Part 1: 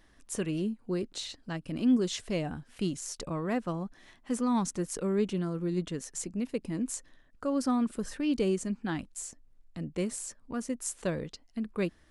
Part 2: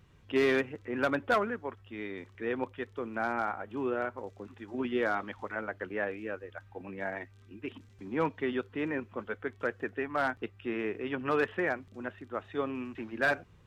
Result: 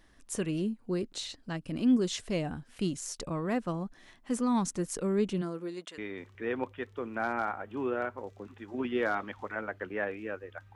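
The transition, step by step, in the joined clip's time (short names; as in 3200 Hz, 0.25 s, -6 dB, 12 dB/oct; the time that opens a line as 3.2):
part 1
5.41–5.98 HPF 180 Hz -> 980 Hz
5.98 switch to part 2 from 1.98 s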